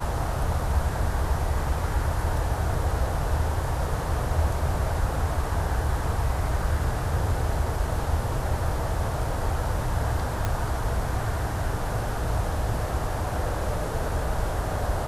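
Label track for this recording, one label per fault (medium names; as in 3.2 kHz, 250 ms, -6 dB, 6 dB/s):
10.450000	10.450000	pop -13 dBFS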